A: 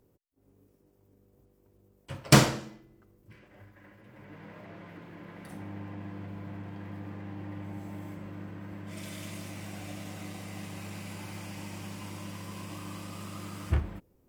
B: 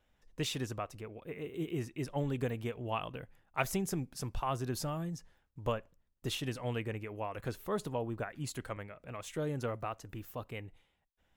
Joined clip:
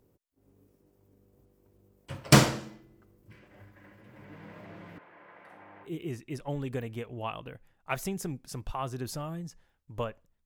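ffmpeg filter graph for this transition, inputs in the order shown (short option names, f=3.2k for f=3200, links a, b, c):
-filter_complex "[0:a]asettb=1/sr,asplit=3[a][b][c];[a]atrim=end=4.984[d];[b]atrim=start=4.98:end=5.9,asetpts=PTS-STARTPTS,afade=t=in:d=0.004:c=qsin,afade=t=out:st=0.916:d=0.004:c=qsin,acrossover=split=490 2600:gain=0.0794 1 0.1[e][f][g];[e][f][g]amix=inputs=3:normalize=0[h];[c]atrim=start=5.896[i];[d][h]acrossfade=d=0.004:c1=hsin:c2=qsin[j];[j][i]acrossfade=d=0.004:c1=qsin:c2=hsin,apad=whole_dur=10.45,atrim=end=10.45,atrim=end=5.9,asetpts=PTS-STARTPTS[k];[1:a]atrim=start=1.5:end=6.13,asetpts=PTS-STARTPTS[l];[k][l]acrossfade=d=0.08:c1=tri:c2=tri"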